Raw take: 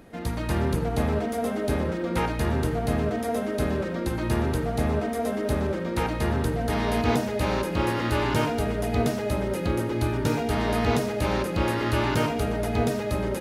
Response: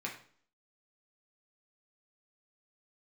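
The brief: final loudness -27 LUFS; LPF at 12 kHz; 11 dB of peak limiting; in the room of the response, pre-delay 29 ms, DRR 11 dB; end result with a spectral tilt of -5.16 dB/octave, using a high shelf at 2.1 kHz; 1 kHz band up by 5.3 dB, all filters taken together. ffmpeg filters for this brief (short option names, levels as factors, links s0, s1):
-filter_complex "[0:a]lowpass=12000,equalizer=f=1000:t=o:g=6,highshelf=f=2100:g=4.5,alimiter=limit=0.0944:level=0:latency=1,asplit=2[s0][s1];[1:a]atrim=start_sample=2205,adelay=29[s2];[s1][s2]afir=irnorm=-1:irlink=0,volume=0.224[s3];[s0][s3]amix=inputs=2:normalize=0,volume=1.19"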